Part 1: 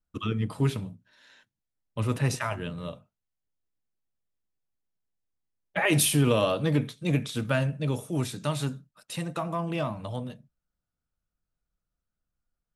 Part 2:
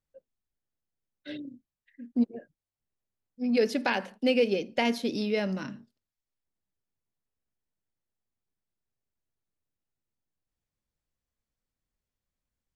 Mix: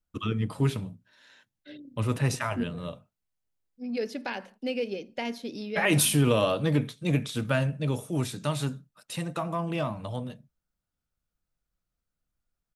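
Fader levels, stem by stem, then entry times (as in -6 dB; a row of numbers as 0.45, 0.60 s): 0.0, -6.5 dB; 0.00, 0.40 s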